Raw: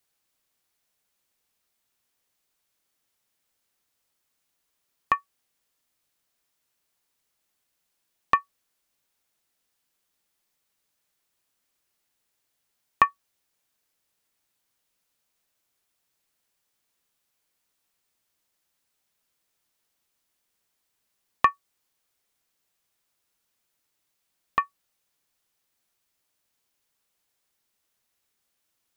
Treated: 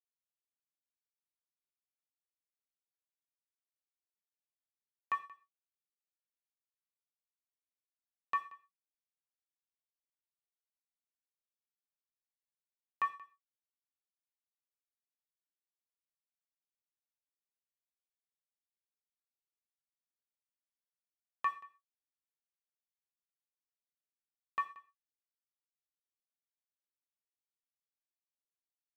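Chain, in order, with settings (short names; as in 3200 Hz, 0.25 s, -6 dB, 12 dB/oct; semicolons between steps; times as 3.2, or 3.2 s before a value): HPF 100 Hz; bell 160 Hz -7.5 dB 2.5 oct; reverse; compressor, threshold -26 dBFS, peak gain reduction 12.5 dB; reverse; crossover distortion -56.5 dBFS; on a send: echo 0.18 s -21 dB; on the sum: non-linear reverb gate 0.15 s falling, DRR 8.5 dB; gain -6.5 dB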